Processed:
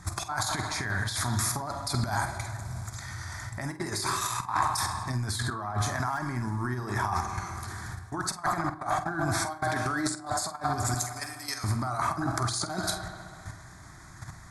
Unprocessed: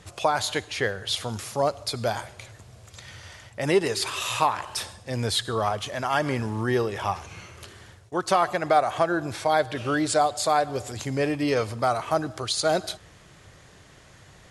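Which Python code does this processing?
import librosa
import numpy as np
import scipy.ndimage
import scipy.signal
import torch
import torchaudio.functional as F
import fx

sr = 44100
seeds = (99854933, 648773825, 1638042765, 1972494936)

y = np.minimum(x, 2.0 * 10.0 ** (-11.5 / 20.0) - x)
y = fx.differentiator(y, sr, at=(10.94, 11.64))
y = fx.level_steps(y, sr, step_db=10)
y = fx.bass_treble(y, sr, bass_db=-7, treble_db=3, at=(9.63, 10.16))
y = fx.echo_bbd(y, sr, ms=66, stages=2048, feedback_pct=81, wet_db=-17)
y = fx.over_compress(y, sr, threshold_db=-34.0, ratio=-0.5)
y = fx.fixed_phaser(y, sr, hz=1200.0, stages=4)
y = fx.doubler(y, sr, ms=48.0, db=-12)
y = fx.rev_fdn(y, sr, rt60_s=1.0, lf_ratio=0.9, hf_ratio=0.4, size_ms=18.0, drr_db=13.5)
y = fx.band_widen(y, sr, depth_pct=70, at=(5.5, 6.0))
y = y * librosa.db_to_amplitude(8.0)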